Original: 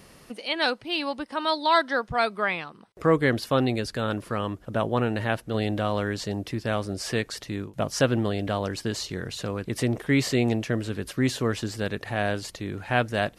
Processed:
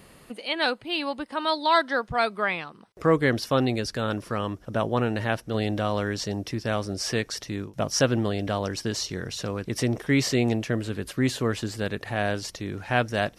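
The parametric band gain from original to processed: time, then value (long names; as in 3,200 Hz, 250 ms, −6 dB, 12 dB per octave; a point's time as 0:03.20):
parametric band 5,600 Hz 0.23 octaves
0:00.98 −12 dB
0:01.65 −1.5 dB
0:02.49 −1.5 dB
0:03.36 +9 dB
0:10.20 +9 dB
0:10.81 −1 dB
0:11.98 −1 dB
0:12.45 +9 dB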